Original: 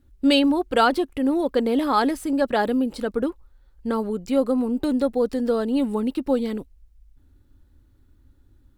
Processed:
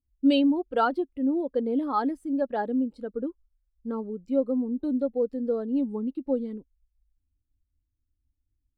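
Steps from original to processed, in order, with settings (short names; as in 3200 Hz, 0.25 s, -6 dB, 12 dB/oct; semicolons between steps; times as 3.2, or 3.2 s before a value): spectral expander 1.5:1; gain -7 dB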